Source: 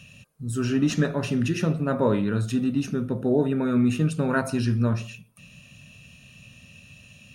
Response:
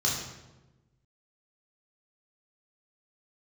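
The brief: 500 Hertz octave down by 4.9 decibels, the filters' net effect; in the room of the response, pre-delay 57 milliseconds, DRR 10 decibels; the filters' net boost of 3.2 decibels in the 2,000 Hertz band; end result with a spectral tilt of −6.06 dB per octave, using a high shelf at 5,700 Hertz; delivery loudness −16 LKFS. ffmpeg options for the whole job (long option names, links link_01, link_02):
-filter_complex "[0:a]equalizer=frequency=500:width_type=o:gain=-6.5,equalizer=frequency=2000:width_type=o:gain=6,highshelf=frequency=5700:gain=-5.5,asplit=2[link_01][link_02];[1:a]atrim=start_sample=2205,adelay=57[link_03];[link_02][link_03]afir=irnorm=-1:irlink=0,volume=-19dB[link_04];[link_01][link_04]amix=inputs=2:normalize=0,volume=8.5dB"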